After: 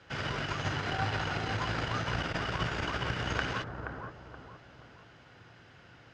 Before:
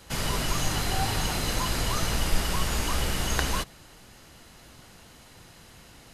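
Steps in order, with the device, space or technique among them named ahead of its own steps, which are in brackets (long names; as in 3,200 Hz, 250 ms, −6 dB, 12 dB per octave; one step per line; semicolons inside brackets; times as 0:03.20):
analogue delay pedal into a guitar amplifier (bucket-brigade delay 475 ms, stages 4,096, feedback 38%, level −5 dB; tube saturation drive 14 dB, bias 0.75; loudspeaker in its box 95–4,600 Hz, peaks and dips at 110 Hz +5 dB, 210 Hz −6 dB, 1,000 Hz −3 dB, 1,500 Hz +7 dB, 4,100 Hz −8 dB)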